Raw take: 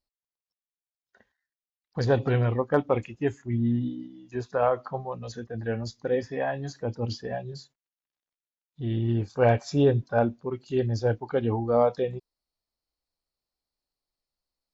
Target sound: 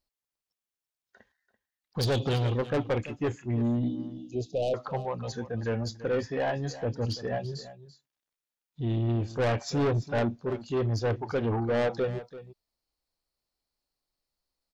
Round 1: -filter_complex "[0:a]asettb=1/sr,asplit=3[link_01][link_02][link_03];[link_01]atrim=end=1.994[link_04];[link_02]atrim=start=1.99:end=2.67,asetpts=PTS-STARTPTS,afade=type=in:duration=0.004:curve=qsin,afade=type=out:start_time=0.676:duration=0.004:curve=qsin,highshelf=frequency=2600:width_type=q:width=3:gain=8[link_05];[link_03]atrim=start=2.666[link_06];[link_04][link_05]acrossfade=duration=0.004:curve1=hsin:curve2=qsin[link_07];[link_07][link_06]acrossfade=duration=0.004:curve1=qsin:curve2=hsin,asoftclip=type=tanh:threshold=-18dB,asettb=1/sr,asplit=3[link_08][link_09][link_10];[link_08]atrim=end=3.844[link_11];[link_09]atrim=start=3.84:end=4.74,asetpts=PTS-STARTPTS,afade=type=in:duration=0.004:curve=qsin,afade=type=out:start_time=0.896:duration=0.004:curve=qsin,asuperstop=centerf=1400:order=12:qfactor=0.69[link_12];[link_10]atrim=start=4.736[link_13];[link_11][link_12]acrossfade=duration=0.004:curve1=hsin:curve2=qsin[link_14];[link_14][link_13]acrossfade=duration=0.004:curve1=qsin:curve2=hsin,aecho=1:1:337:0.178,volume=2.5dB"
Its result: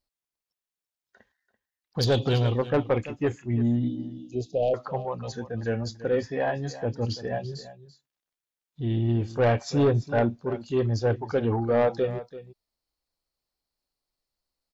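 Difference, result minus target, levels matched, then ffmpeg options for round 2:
soft clipping: distortion −6 dB
-filter_complex "[0:a]asettb=1/sr,asplit=3[link_01][link_02][link_03];[link_01]atrim=end=1.994[link_04];[link_02]atrim=start=1.99:end=2.67,asetpts=PTS-STARTPTS,afade=type=in:duration=0.004:curve=qsin,afade=type=out:start_time=0.676:duration=0.004:curve=qsin,highshelf=frequency=2600:width_type=q:width=3:gain=8[link_05];[link_03]atrim=start=2.666[link_06];[link_04][link_05]acrossfade=duration=0.004:curve1=hsin:curve2=qsin[link_07];[link_07][link_06]acrossfade=duration=0.004:curve1=qsin:curve2=hsin,asoftclip=type=tanh:threshold=-25.5dB,asettb=1/sr,asplit=3[link_08][link_09][link_10];[link_08]atrim=end=3.844[link_11];[link_09]atrim=start=3.84:end=4.74,asetpts=PTS-STARTPTS,afade=type=in:duration=0.004:curve=qsin,afade=type=out:start_time=0.896:duration=0.004:curve=qsin,asuperstop=centerf=1400:order=12:qfactor=0.69[link_12];[link_10]atrim=start=4.736[link_13];[link_11][link_12]acrossfade=duration=0.004:curve1=hsin:curve2=qsin[link_14];[link_14][link_13]acrossfade=duration=0.004:curve1=qsin:curve2=hsin,aecho=1:1:337:0.178,volume=2.5dB"

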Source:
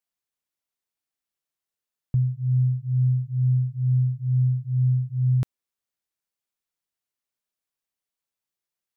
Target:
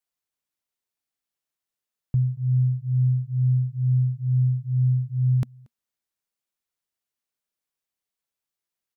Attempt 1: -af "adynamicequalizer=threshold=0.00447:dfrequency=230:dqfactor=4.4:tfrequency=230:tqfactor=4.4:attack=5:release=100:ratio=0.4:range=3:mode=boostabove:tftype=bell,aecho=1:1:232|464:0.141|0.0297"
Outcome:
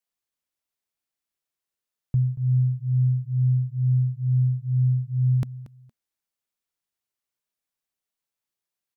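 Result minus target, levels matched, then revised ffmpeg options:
echo-to-direct +11 dB
-af "adynamicequalizer=threshold=0.00447:dfrequency=230:dqfactor=4.4:tfrequency=230:tqfactor=4.4:attack=5:release=100:ratio=0.4:range=3:mode=boostabove:tftype=bell,aecho=1:1:232:0.0398"

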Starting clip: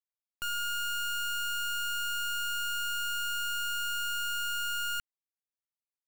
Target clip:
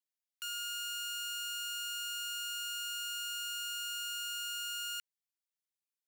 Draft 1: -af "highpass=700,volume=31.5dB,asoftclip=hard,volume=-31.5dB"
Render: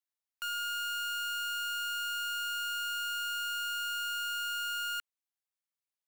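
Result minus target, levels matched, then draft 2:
2,000 Hz band +4.0 dB
-af "highpass=2300,volume=31.5dB,asoftclip=hard,volume=-31.5dB"

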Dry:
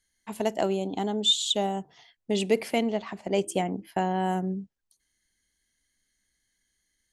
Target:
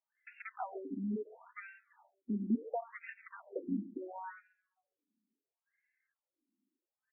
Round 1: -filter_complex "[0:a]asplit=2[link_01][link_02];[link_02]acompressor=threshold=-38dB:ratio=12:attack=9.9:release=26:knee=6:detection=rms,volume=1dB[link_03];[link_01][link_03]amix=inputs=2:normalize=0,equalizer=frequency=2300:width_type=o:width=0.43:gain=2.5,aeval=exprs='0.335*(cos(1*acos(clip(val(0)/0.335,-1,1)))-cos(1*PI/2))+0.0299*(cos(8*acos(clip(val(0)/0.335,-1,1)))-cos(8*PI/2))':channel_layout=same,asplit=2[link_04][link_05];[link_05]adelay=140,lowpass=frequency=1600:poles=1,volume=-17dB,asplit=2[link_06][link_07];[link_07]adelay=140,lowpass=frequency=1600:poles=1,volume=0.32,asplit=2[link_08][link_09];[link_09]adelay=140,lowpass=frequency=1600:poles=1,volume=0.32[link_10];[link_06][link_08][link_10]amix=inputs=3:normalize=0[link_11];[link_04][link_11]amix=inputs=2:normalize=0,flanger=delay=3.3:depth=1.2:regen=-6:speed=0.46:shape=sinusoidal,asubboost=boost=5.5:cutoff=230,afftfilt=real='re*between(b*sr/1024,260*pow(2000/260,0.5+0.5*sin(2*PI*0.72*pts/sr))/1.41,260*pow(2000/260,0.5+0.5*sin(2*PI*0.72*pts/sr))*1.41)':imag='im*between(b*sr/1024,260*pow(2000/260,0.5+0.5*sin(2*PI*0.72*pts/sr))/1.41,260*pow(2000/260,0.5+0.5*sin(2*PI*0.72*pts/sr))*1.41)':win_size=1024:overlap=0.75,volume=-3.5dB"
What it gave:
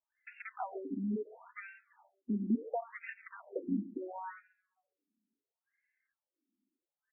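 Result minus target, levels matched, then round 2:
downward compressor: peak gain reduction −10 dB
-filter_complex "[0:a]asplit=2[link_01][link_02];[link_02]acompressor=threshold=-49dB:ratio=12:attack=9.9:release=26:knee=6:detection=rms,volume=1dB[link_03];[link_01][link_03]amix=inputs=2:normalize=0,equalizer=frequency=2300:width_type=o:width=0.43:gain=2.5,aeval=exprs='0.335*(cos(1*acos(clip(val(0)/0.335,-1,1)))-cos(1*PI/2))+0.0299*(cos(8*acos(clip(val(0)/0.335,-1,1)))-cos(8*PI/2))':channel_layout=same,asplit=2[link_04][link_05];[link_05]adelay=140,lowpass=frequency=1600:poles=1,volume=-17dB,asplit=2[link_06][link_07];[link_07]adelay=140,lowpass=frequency=1600:poles=1,volume=0.32,asplit=2[link_08][link_09];[link_09]adelay=140,lowpass=frequency=1600:poles=1,volume=0.32[link_10];[link_06][link_08][link_10]amix=inputs=3:normalize=0[link_11];[link_04][link_11]amix=inputs=2:normalize=0,flanger=delay=3.3:depth=1.2:regen=-6:speed=0.46:shape=sinusoidal,asubboost=boost=5.5:cutoff=230,afftfilt=real='re*between(b*sr/1024,260*pow(2000/260,0.5+0.5*sin(2*PI*0.72*pts/sr))/1.41,260*pow(2000/260,0.5+0.5*sin(2*PI*0.72*pts/sr))*1.41)':imag='im*between(b*sr/1024,260*pow(2000/260,0.5+0.5*sin(2*PI*0.72*pts/sr))/1.41,260*pow(2000/260,0.5+0.5*sin(2*PI*0.72*pts/sr))*1.41)':win_size=1024:overlap=0.75,volume=-3.5dB"

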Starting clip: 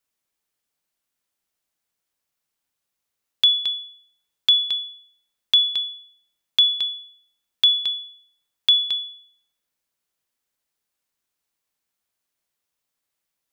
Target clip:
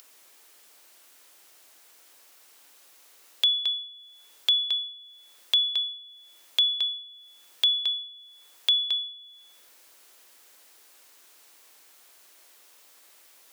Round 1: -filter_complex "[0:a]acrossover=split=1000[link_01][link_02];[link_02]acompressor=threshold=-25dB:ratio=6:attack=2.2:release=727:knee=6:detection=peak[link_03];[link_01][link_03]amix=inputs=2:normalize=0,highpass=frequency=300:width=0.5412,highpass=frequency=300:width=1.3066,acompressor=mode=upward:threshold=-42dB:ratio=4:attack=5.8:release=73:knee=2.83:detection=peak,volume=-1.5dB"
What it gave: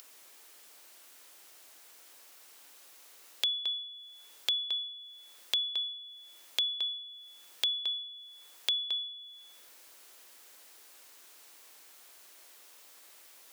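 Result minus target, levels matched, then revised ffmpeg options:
downward compressor: peak gain reduction +8.5 dB
-filter_complex "[0:a]acrossover=split=1000[link_01][link_02];[link_02]acompressor=threshold=-14.5dB:ratio=6:attack=2.2:release=727:knee=6:detection=peak[link_03];[link_01][link_03]amix=inputs=2:normalize=0,highpass=frequency=300:width=0.5412,highpass=frequency=300:width=1.3066,acompressor=mode=upward:threshold=-42dB:ratio=4:attack=5.8:release=73:knee=2.83:detection=peak,volume=-1.5dB"

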